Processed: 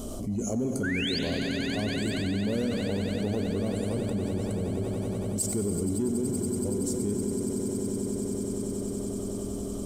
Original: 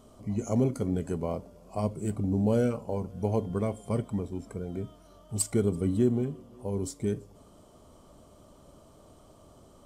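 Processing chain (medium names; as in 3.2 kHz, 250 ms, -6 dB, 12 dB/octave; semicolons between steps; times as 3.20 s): ten-band graphic EQ 125 Hz -10 dB, 500 Hz -4 dB, 1 kHz -11 dB, 2 kHz -11 dB, 4 kHz -4 dB; painted sound rise, 0.83–1.19 s, 1.4–5 kHz -36 dBFS; in parallel at -5.5 dB: saturation -30.5 dBFS, distortion -10 dB; on the sum: echo with a slow build-up 94 ms, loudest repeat 8, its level -14.5 dB; on a send at -8 dB: reverberation RT60 1.8 s, pre-delay 82 ms; on the sum: level flattener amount 70%; trim -3.5 dB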